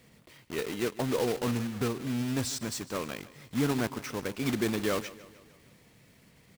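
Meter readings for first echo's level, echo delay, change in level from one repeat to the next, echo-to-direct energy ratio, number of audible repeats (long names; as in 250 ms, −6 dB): −18.0 dB, 152 ms, −5.5 dB, −16.5 dB, 4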